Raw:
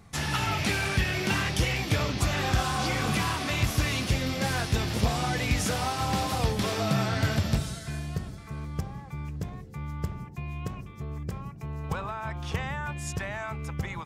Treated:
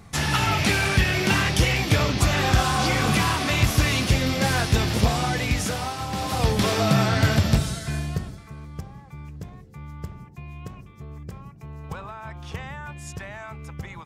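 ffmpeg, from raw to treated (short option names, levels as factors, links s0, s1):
-af "volume=5.62,afade=t=out:st=4.85:d=1.26:silence=0.375837,afade=t=in:st=6.11:d=0.46:silence=0.354813,afade=t=out:st=8:d=0.55:silence=0.334965"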